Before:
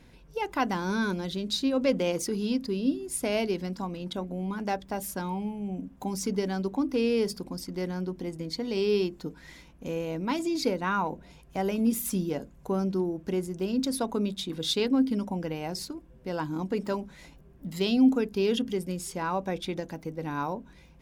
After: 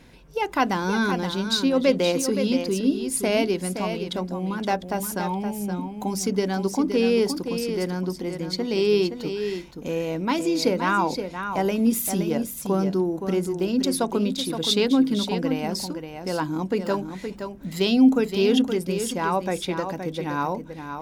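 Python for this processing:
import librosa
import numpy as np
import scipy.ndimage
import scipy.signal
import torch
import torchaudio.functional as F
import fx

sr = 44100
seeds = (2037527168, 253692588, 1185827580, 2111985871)

y = fx.low_shelf(x, sr, hz=160.0, db=-4.5)
y = y + 10.0 ** (-8.0 / 20.0) * np.pad(y, (int(520 * sr / 1000.0), 0))[:len(y)]
y = F.gain(torch.from_numpy(y), 6.0).numpy()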